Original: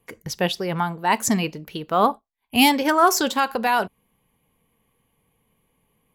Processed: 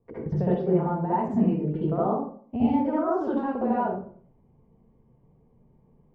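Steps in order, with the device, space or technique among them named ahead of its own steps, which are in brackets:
television next door (downward compressor 5 to 1, threshold −27 dBFS, peak gain reduction 14 dB; low-pass filter 560 Hz 12 dB per octave; convolution reverb RT60 0.50 s, pre-delay 60 ms, DRR −9 dB)

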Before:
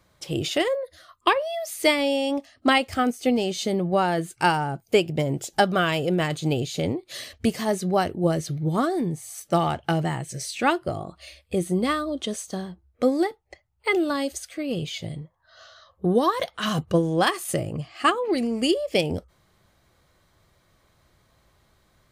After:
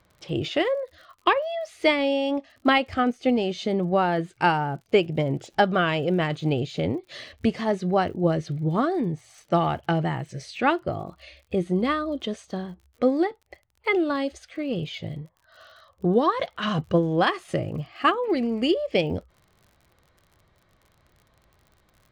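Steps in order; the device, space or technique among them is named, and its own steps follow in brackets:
lo-fi chain (low-pass filter 3,400 Hz 12 dB per octave; tape wow and flutter 17 cents; surface crackle 50 per second −44 dBFS)

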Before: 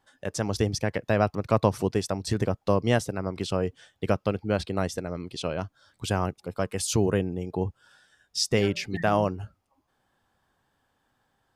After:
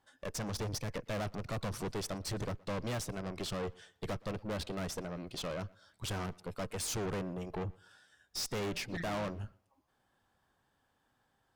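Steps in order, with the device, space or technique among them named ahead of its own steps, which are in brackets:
rockabilly slapback (tube saturation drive 34 dB, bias 0.7; tape delay 119 ms, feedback 31%, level −23 dB, low-pass 4,500 Hz)

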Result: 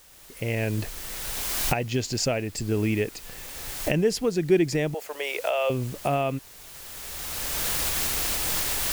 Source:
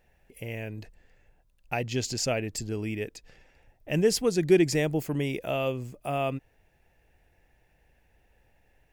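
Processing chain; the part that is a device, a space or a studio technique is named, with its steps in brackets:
0:04.94–0:05.70: Butterworth high-pass 480 Hz 36 dB per octave
high-shelf EQ 5,200 Hz −6 dB
cheap recorder with automatic gain (white noise bed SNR 23 dB; camcorder AGC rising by 18 dB per second)

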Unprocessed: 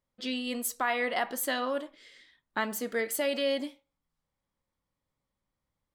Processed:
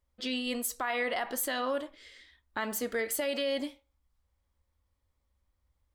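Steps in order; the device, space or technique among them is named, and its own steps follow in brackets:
car stereo with a boomy subwoofer (low shelf with overshoot 100 Hz +9.5 dB, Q 3; brickwall limiter −23.5 dBFS, peak gain reduction 6 dB)
level +1.5 dB

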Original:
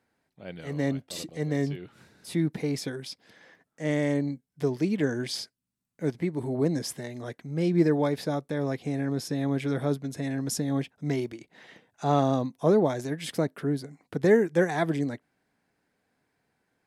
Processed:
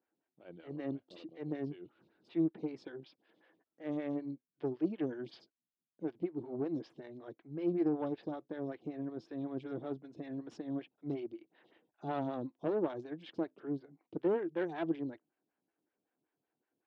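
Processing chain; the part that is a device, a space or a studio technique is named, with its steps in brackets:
vibe pedal into a guitar amplifier (phaser with staggered stages 5.3 Hz; tube saturation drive 20 dB, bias 0.65; loudspeaker in its box 93–4,000 Hz, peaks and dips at 330 Hz +10 dB, 2,000 Hz −5 dB, 2,900 Hz +4 dB)
level −8 dB

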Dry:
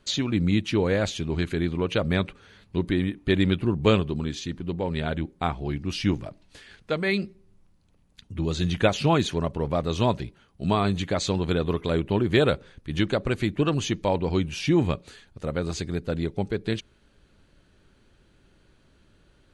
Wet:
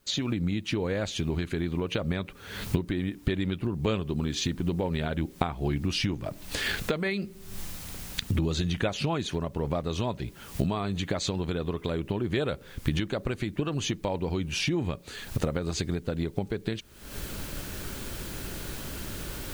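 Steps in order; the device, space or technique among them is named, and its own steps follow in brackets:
cheap recorder with automatic gain (white noise bed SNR 38 dB; camcorder AGC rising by 65 dB per second)
level −8.5 dB

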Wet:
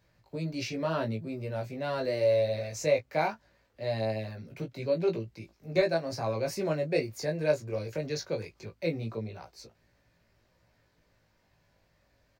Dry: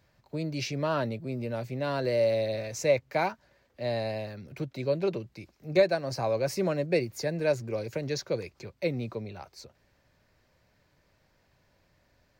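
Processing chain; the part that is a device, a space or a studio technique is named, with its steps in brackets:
double-tracked vocal (double-tracking delay 18 ms −12 dB; chorus effect 0.2 Hz, delay 17.5 ms, depth 2.3 ms)
level +1 dB

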